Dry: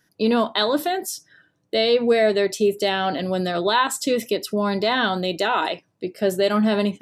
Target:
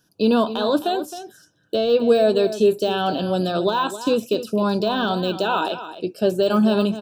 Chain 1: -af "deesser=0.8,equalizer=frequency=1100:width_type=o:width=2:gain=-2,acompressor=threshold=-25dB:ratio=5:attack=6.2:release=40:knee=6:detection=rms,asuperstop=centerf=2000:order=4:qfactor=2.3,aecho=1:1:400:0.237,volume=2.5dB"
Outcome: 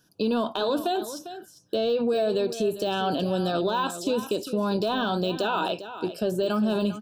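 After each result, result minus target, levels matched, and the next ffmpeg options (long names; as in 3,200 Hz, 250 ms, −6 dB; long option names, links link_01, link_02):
downward compressor: peak gain reduction +10.5 dB; echo 135 ms late
-af "deesser=0.8,asuperstop=centerf=2000:order=4:qfactor=2.3,equalizer=frequency=1100:width_type=o:width=2:gain=-2,aecho=1:1:400:0.237,volume=2.5dB"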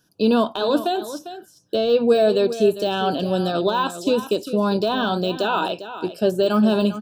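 echo 135 ms late
-af "deesser=0.8,asuperstop=centerf=2000:order=4:qfactor=2.3,equalizer=frequency=1100:width_type=o:width=2:gain=-2,aecho=1:1:265:0.237,volume=2.5dB"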